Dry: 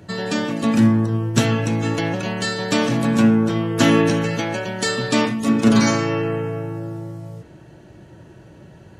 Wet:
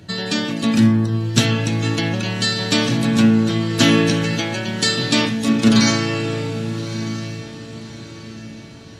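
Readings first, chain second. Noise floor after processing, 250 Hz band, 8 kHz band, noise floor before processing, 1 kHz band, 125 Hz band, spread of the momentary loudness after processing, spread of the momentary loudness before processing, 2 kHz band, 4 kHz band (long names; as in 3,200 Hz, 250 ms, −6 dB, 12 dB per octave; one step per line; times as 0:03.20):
−37 dBFS, +1.0 dB, +4.0 dB, −45 dBFS, −2.0 dB, +2.0 dB, 19 LU, 12 LU, +2.0 dB, +7.0 dB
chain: octave-band graphic EQ 500/1,000/4,000 Hz −4/−4/+7 dB
on a send: feedback delay with all-pass diffusion 1,207 ms, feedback 42%, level −13.5 dB
on the sum: level +1.5 dB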